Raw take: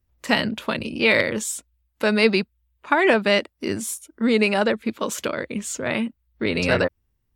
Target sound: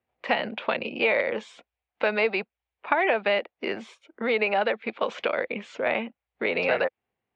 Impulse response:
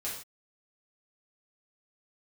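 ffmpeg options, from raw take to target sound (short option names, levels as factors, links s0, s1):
-filter_complex "[0:a]highpass=250,equalizer=f=290:t=q:w=4:g=-5,equalizer=f=500:t=q:w=4:g=5,equalizer=f=750:t=q:w=4:g=10,equalizer=f=2300:t=q:w=4:g=5,lowpass=f=3400:w=0.5412,lowpass=f=3400:w=1.3066,acrossover=split=490|1300[s0][s1][s2];[s0]acompressor=threshold=0.0224:ratio=4[s3];[s1]acompressor=threshold=0.0501:ratio=4[s4];[s2]acompressor=threshold=0.0447:ratio=4[s5];[s3][s4][s5]amix=inputs=3:normalize=0"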